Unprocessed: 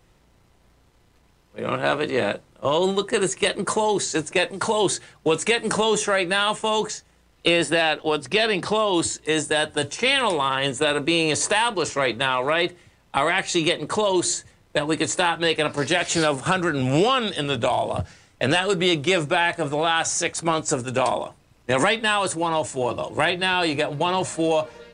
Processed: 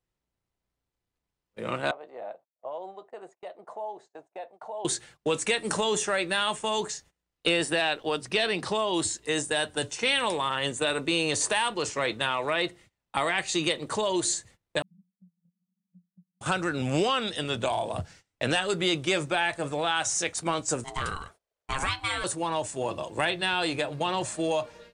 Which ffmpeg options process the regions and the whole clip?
-filter_complex "[0:a]asettb=1/sr,asplit=3[a][b][c];[a]atrim=end=1.914[d];[b]atrim=start=1.91:end=4.85,asetpts=PTS-STARTPTS,afade=t=in:d=0.004:c=qsin,afade=t=out:st=2.936:d=0.004:c=qsin,bandpass=f=710:t=q:w=5.6,agate=range=-33dB:threshold=-57dB:ratio=3:release=100:detection=peak[e];[c]atrim=start=4.846[f];[d][e]acrossfade=d=0.004:c1=hsin:c2=qsin[g];[g][f]acrossfade=d=0.004:c1=qsin:c2=hsin,asettb=1/sr,asplit=3[h][i][j];[h]atrim=end=14.824[k];[i]atrim=start=14.82:end=16.41,asetpts=PTS-STARTPTS,afade=t=in:d=0.004:c=qsin,afade=t=out:st=1.586:d=0.004:c=qsin,asuperpass=centerf=190:order=8:qfactor=6.1,acompressor=threshold=-42dB:ratio=6:attack=3.2:release=140:knee=1:detection=peak[l];[j]atrim=start=16.406[m];[k][l]acrossfade=d=0.004:c1=hsin:c2=qsin[n];[n][m]acrossfade=d=0.004:c1=qsin:c2=hsin,asettb=1/sr,asplit=3[o][p][q];[o]atrim=end=20.844[r];[p]atrim=start=20.84:end=22.24,asetpts=PTS-STARTPTS,afade=t=in:d=0.004:c=qsin,afade=t=out:st=1.396:d=0.004:c=qsin,aeval=exprs='val(0)*sin(2*PI*540*n/s)':c=same,equalizer=f=260:t=o:w=1.5:g=-8.5[s];[q]atrim=start=22.236[t];[r][s]acrossfade=d=0.004:c1=hsin:c2=qsin[u];[u][t]acrossfade=d=0.004:c1=qsin:c2=hsin,highshelf=f=3.1k:g=3.5,agate=range=-21dB:threshold=-44dB:ratio=16:detection=peak,volume=-6.5dB"

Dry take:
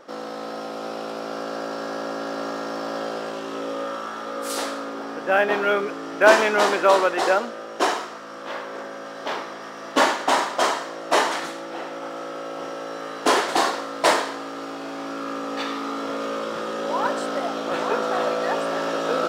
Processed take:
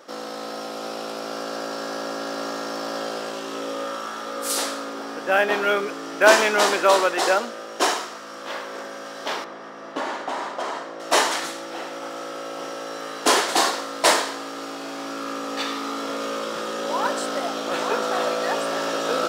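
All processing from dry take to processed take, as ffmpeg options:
-filter_complex "[0:a]asettb=1/sr,asplit=3[a][b][c];[a]atrim=end=9.444[d];[b]atrim=start=9.44:end=11,asetpts=PTS-STARTPTS,afade=t=in:d=0.004:c=qsin,afade=t=out:st=1.556:d=0.004:c=qsin,lowpass=f=1.3k:p=1,acompressor=threshold=-23dB:ratio=6:attack=3.2:release=140:knee=1:detection=peak[e];[c]atrim=start=10.996[f];[d][e]acrossfade=d=0.004:c1=hsin:c2=qsin[g];[g][f]acrossfade=d=0.004:c1=qsin:c2=hsin,highpass=130,highshelf=f=3.5k:g=9.5,volume=-1dB"

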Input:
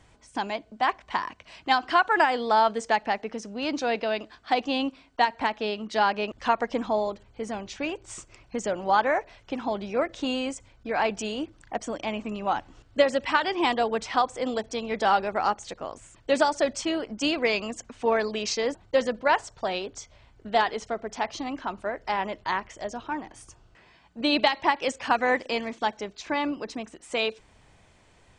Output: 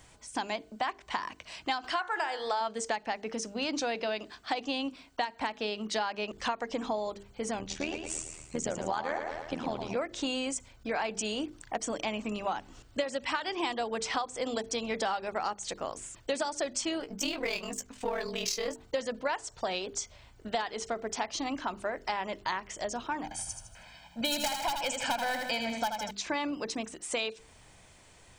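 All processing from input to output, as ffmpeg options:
-filter_complex "[0:a]asettb=1/sr,asplit=3[a][b][c];[a]atrim=end=1.844[d];[b]atrim=start=1.84:end=2.61,asetpts=PTS-STARTPTS,afade=t=in:d=0.004:c=qsin,afade=t=out:st=0.766:d=0.004:c=qsin,equalizer=f=220:w=2:g=-14.5,bandreject=f=60.3:t=h:w=4,bandreject=f=120.6:t=h:w=4,bandreject=f=180.9:t=h:w=4,bandreject=f=241.2:t=h:w=4,bandreject=f=301.5:t=h:w=4,bandreject=f=361.8:t=h:w=4,bandreject=f=422.1:t=h:w=4,bandreject=f=482.4:t=h:w=4,bandreject=f=542.7:t=h:w=4,bandreject=f=603:t=h:w=4,bandreject=f=663.3:t=h:w=4,bandreject=f=723.6:t=h:w=4,bandreject=f=783.9:t=h:w=4,bandreject=f=844.2:t=h:w=4,bandreject=f=904.5:t=h:w=4,bandreject=f=964.8:t=h:w=4,bandreject=f=1.0251k:t=h:w=4,bandreject=f=1.0854k:t=h:w=4,bandreject=f=1.1457k:t=h:w=4,bandreject=f=1.206k:t=h:w=4,bandreject=f=1.2663k:t=h:w=4,bandreject=f=1.3266k:t=h:w=4,bandreject=f=1.3869k:t=h:w=4,bandreject=f=1.4472k:t=h:w=4,bandreject=f=1.5075k:t=h:w=4,bandreject=f=1.5678k:t=h:w=4,bandreject=f=1.6281k:t=h:w=4,bandreject=f=1.6884k:t=h:w=4,bandreject=f=1.7487k:t=h:w=4,bandreject=f=1.809k:t=h:w=4,bandreject=f=1.8693k:t=h:w=4,bandreject=f=1.9296k:t=h:w=4,bandreject=f=1.9899k:t=h:w=4,bandreject=f=2.0502k:t=h:w=4,bandreject=f=2.1105k:t=h:w=4,bandreject=f=2.1708k:t=h:w=4,acompressor=mode=upward:threshold=-30dB:ratio=2.5:attack=3.2:release=140:knee=2.83:detection=peak[e];[c]atrim=start=2.606[f];[d][e]acrossfade=d=0.004:c1=hsin:c2=qsin[g];[g][f]acrossfade=d=0.004:c1=qsin:c2=hsin,asettb=1/sr,asplit=3[h][i][j];[h]atrim=end=7.594[k];[i]atrim=start=7.59:end=9.96,asetpts=PTS-STARTPTS,afade=t=in:d=0.004:c=qsin,afade=t=out:st=2.366:d=0.004:c=qsin,lowshelf=f=170:g=9.5,aecho=1:1:112|224|336|448|560|672:0.398|0.195|0.0956|0.0468|0.023|0.0112,atrim=end_sample=104517,tremolo=f=80:d=0.824[l];[j]atrim=start=9.956[m];[k][l]acrossfade=d=0.004:c1=hsin:c2=qsin[n];[n][m]acrossfade=d=0.004:c1=qsin:c2=hsin,asettb=1/sr,asplit=3[o][p][q];[o]atrim=end=17.004[r];[p]atrim=start=17:end=18.8,asetpts=PTS-STARTPTS,afade=t=in:d=0.004:c=qsin,afade=t=out:st=1.796:d=0.004:c=qsin,aeval=exprs='if(lt(val(0),0),0.708*val(0),val(0))':c=same,aeval=exprs='val(0)*sin(2*PI*20*n/s)':c=same,asplit=2[s][t];[t]adelay=15,volume=-7dB[u];[s][u]amix=inputs=2:normalize=0,atrim=end_sample=79380[v];[q]atrim=start=18.796[w];[r][v]acrossfade=d=0.004:c1=hsin:c2=qsin[x];[x][w]acrossfade=d=0.004:c1=qsin:c2=hsin,asettb=1/sr,asplit=3[y][z][aa];[y]atrim=end=23.234[ab];[z]atrim=start=23.23:end=26.11,asetpts=PTS-STARTPTS,afade=t=in:d=0.004:c=qsin,afade=t=out:st=2.876:d=0.004:c=qsin,aeval=exprs='0.141*(abs(mod(val(0)/0.141+3,4)-2)-1)':c=same,aecho=1:1:1.3:0.88,atrim=end_sample=127008,aecho=1:1:79|158|237|316|395:0.473|0.203|0.0875|0.0376|0.0162,atrim=end_sample=127008[ac];[aa]atrim=start=26.106[ad];[ab][ac]acrossfade=d=0.004:c1=hsin:c2=qsin[ae];[ae][ad]acrossfade=d=0.004:c1=qsin:c2=hsin,aemphasis=mode=production:type=50kf,bandreject=f=50:t=h:w=6,bandreject=f=100:t=h:w=6,bandreject=f=150:t=h:w=6,bandreject=f=200:t=h:w=6,bandreject=f=250:t=h:w=6,bandreject=f=300:t=h:w=6,bandreject=f=350:t=h:w=6,bandreject=f=400:t=h:w=6,bandreject=f=450:t=h:w=6,acompressor=threshold=-29dB:ratio=6"

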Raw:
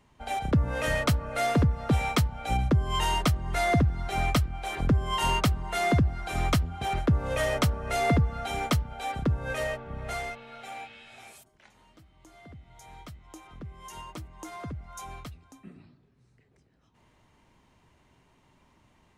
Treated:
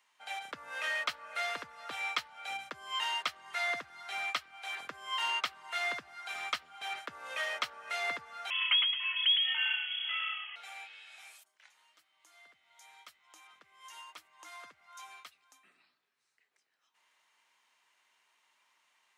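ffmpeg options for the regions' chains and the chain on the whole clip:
-filter_complex "[0:a]asettb=1/sr,asplit=3[a][b][c];[a]atrim=end=8.504[d];[b]atrim=start=8.5:end=10.56,asetpts=PTS-STARTPTS,afade=t=in:d=0.004:c=qsin,afade=t=out:st=2.056:d=0.004:c=qsin,lowpass=f=2.9k:t=q:w=0.5098,lowpass=f=2.9k:t=q:w=0.6013,lowpass=f=2.9k:t=q:w=0.9,lowpass=f=2.9k:t=q:w=2.563,afreqshift=-3400,asplit=5[e][f][g][h][i];[f]adelay=109,afreqshift=-33,volume=-5dB[j];[g]adelay=218,afreqshift=-66,volume=-14.1dB[k];[h]adelay=327,afreqshift=-99,volume=-23.2dB[l];[i]adelay=436,afreqshift=-132,volume=-32.4dB[m];[e][j][k][l][m]amix=inputs=5:normalize=0,atrim=end_sample=90846[n];[c]atrim=start=10.556[o];[d][n]acrossfade=d=0.004:c1=hsin:c2=qsin[p];[p][o]acrossfade=d=0.004:c1=qsin:c2=hsin,acrossover=split=4900[q][r];[r]acompressor=threshold=-55dB:ratio=4:attack=1:release=60[s];[q][s]amix=inputs=2:normalize=0,highpass=1.4k,volume=-1dB"

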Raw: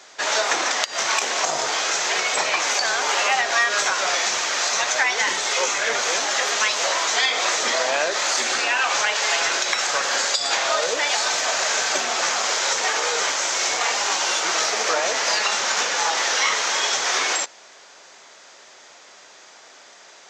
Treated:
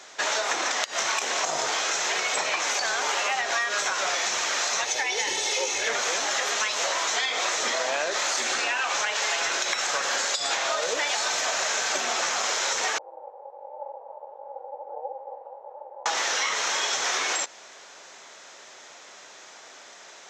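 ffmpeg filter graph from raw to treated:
-filter_complex "[0:a]asettb=1/sr,asplit=3[a][b][c];[a]atrim=end=4.854[d];[b]atrim=start=4.85:end=5.87,asetpts=PTS-STARTPTS,afade=t=in:d=0.004:c=qsin,afade=t=out:st=1.016:d=0.004:c=qsin,equalizer=f=1.3k:w=1.7:g=-12,bandreject=f=7.4k:w=11,aecho=1:1:2.3:0.5,atrim=end_sample=44982[e];[c]atrim=start=5.866[f];[d][e]acrossfade=d=0.004:c1=hsin:c2=qsin[g];[g][f]acrossfade=d=0.004:c1=qsin:c2=hsin,asettb=1/sr,asplit=3[h][i][j];[h]atrim=end=12.984[k];[i]atrim=start=12.98:end=16.06,asetpts=PTS-STARTPTS,afade=t=in:d=0.004:c=qsin,afade=t=out:st=3.076:d=0.004:c=qsin,asuperpass=centerf=690:order=4:qfactor=7.6,aeval=exprs='val(0)*sin(2*PI*140*n/s)':c=same[l];[j]atrim=start=16.056[m];[k][l]acrossfade=d=0.004:c1=hsin:c2=qsin[n];[n][m]acrossfade=d=0.004:c1=qsin:c2=hsin,equalizer=f=11k:t=o:w=0.27:g=4.5,bandreject=f=4.7k:w=18,acompressor=threshold=-23dB:ratio=6"

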